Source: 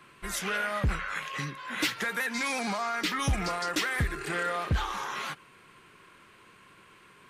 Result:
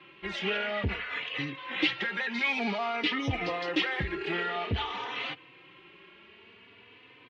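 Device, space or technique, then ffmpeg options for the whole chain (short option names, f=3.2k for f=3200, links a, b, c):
barber-pole flanger into a guitar amplifier: -filter_complex "[0:a]asplit=2[a][b];[b]adelay=3.3,afreqshift=0.52[c];[a][c]amix=inputs=2:normalize=1,asoftclip=type=tanh:threshold=-23dB,highpass=110,equalizer=f=150:t=q:w=4:g=-9,equalizer=f=210:t=q:w=4:g=-4,equalizer=f=600:t=q:w=4:g=-4,equalizer=f=1.1k:t=q:w=4:g=-9,equalizer=f=1.5k:t=q:w=4:g=-10,equalizer=f=2.9k:t=q:w=4:g=4,lowpass=f=3.5k:w=0.5412,lowpass=f=3.5k:w=1.3066,volume=7.5dB"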